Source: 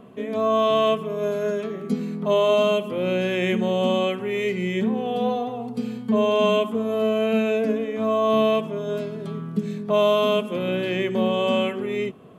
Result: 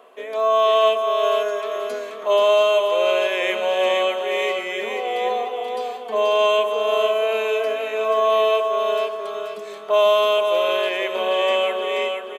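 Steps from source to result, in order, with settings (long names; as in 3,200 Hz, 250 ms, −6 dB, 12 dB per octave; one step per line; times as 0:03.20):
high-pass filter 500 Hz 24 dB per octave
on a send: repeating echo 482 ms, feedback 31%, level −4.5 dB
on the sum: level +4 dB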